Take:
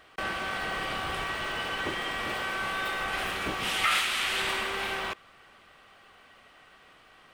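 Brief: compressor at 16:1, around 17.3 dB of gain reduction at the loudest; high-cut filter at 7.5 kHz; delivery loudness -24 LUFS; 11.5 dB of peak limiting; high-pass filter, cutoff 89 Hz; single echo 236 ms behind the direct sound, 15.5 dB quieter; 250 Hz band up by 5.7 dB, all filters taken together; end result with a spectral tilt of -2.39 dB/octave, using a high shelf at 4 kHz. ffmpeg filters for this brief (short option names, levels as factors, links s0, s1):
-af "highpass=89,lowpass=7500,equalizer=f=250:t=o:g=8,highshelf=f=4000:g=6.5,acompressor=threshold=0.0141:ratio=16,alimiter=level_in=3.55:limit=0.0631:level=0:latency=1,volume=0.282,aecho=1:1:236:0.168,volume=10"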